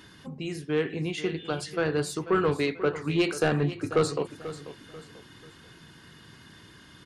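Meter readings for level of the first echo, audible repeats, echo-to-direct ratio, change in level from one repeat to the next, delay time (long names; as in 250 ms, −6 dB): −14.0 dB, 3, −13.5 dB, −9.0 dB, 489 ms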